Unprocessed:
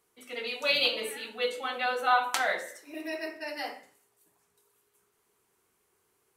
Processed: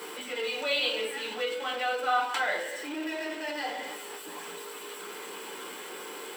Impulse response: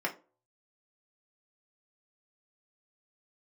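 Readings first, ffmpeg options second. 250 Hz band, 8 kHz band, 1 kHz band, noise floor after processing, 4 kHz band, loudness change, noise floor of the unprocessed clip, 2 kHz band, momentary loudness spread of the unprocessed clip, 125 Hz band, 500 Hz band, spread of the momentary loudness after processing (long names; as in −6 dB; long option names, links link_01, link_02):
+4.0 dB, +2.5 dB, −0.5 dB, −42 dBFS, −0.5 dB, −2.5 dB, −74 dBFS, 0.0 dB, 14 LU, can't be measured, +1.0 dB, 13 LU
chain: -filter_complex "[0:a]aeval=exprs='val(0)+0.5*0.0398*sgn(val(0))':channel_layout=same[link_01];[1:a]atrim=start_sample=2205,asetrate=66150,aresample=44100[link_02];[link_01][link_02]afir=irnorm=-1:irlink=0,volume=-7dB"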